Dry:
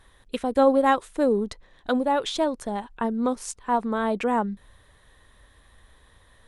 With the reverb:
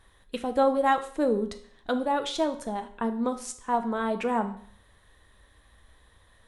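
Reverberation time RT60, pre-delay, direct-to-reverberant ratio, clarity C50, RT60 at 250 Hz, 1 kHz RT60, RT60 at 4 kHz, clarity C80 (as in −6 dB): 0.55 s, 5 ms, 8.0 dB, 12.5 dB, 0.60 s, 0.55 s, 0.55 s, 16.5 dB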